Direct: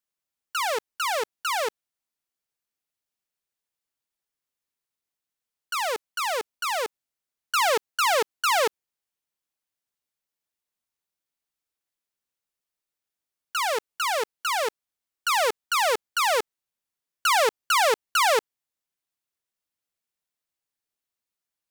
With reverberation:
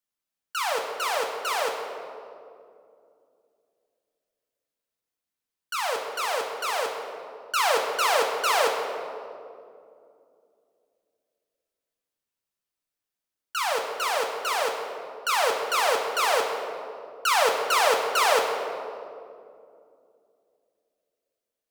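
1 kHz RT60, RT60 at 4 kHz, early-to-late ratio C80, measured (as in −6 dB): 2.2 s, 1.3 s, 5.5 dB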